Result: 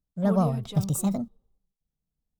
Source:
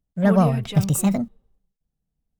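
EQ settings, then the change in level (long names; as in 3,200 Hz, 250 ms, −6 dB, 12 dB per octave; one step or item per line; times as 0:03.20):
flat-topped bell 2,100 Hz −9 dB 1.1 octaves
−6.0 dB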